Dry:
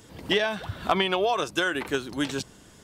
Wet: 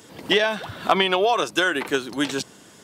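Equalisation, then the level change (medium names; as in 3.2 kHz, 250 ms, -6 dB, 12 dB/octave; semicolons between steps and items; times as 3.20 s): Bessel high-pass 200 Hz, order 2; +5.0 dB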